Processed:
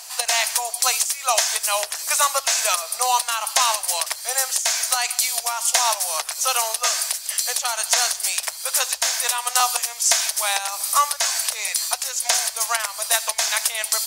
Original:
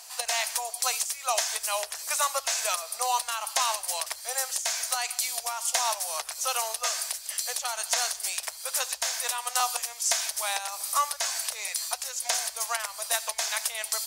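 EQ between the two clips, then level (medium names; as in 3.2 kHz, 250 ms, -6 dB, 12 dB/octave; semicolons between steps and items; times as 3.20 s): bass shelf 68 Hz -8.5 dB; peaking EQ 410 Hz -2.5 dB 2 oct; +8.0 dB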